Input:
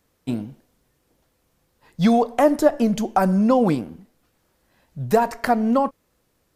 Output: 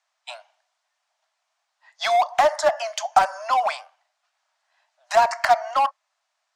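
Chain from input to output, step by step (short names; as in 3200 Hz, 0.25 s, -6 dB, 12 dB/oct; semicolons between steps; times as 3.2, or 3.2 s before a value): LPF 7300 Hz 24 dB/oct; spectral noise reduction 10 dB; steep high-pass 620 Hz 96 dB/oct; in parallel at -6 dB: wavefolder -25 dBFS; on the sum: gain +3.5 dB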